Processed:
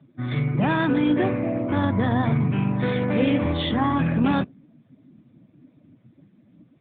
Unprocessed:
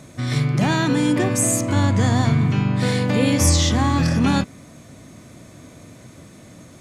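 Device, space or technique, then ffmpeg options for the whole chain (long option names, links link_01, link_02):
mobile call with aggressive noise cancelling: -af "highpass=frequency=170:poles=1,afftdn=noise_reduction=19:noise_floor=-33" -ar 8000 -c:a libopencore_amrnb -b:a 10200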